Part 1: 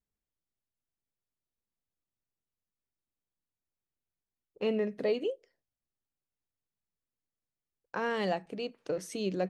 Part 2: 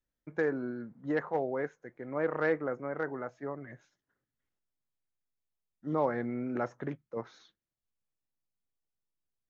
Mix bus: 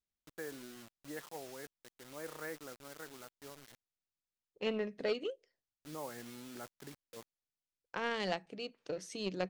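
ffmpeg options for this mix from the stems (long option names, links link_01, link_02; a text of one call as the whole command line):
ffmpeg -i stem1.wav -i stem2.wav -filter_complex "[0:a]lowpass=6000,aeval=exprs='0.119*(cos(1*acos(clip(val(0)/0.119,-1,1)))-cos(1*PI/2))+0.0188*(cos(3*acos(clip(val(0)/0.119,-1,1)))-cos(3*PI/2))':channel_layout=same,volume=-2.5dB[link_01];[1:a]adynamicequalizer=threshold=0.00708:dfrequency=540:dqfactor=2:tfrequency=540:tqfactor=2:attack=5:release=100:ratio=0.375:range=2:mode=cutabove:tftype=bell,acrusher=bits=6:mix=0:aa=0.000001,volume=-15dB[link_02];[link_01][link_02]amix=inputs=2:normalize=0,highshelf=frequency=2800:gain=10" out.wav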